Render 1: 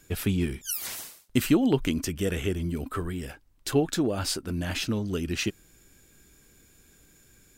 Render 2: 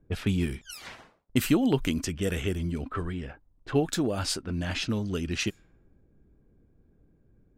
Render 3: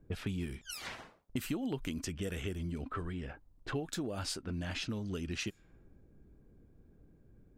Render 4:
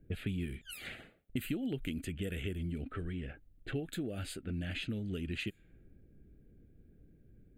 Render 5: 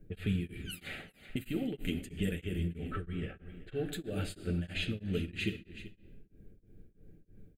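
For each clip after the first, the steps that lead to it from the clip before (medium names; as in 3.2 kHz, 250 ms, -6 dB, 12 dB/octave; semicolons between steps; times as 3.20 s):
level-controlled noise filter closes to 480 Hz, open at -24 dBFS; peaking EQ 350 Hz -2.5 dB 0.77 oct
compression 3:1, threshold -39 dBFS, peak gain reduction 15.5 dB; trim +1 dB
static phaser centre 2.4 kHz, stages 4; trim +1 dB
delay 383 ms -15 dB; reverberation RT60 1.2 s, pre-delay 5 ms, DRR 2 dB; tremolo of two beating tones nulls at 3.1 Hz; trim +3 dB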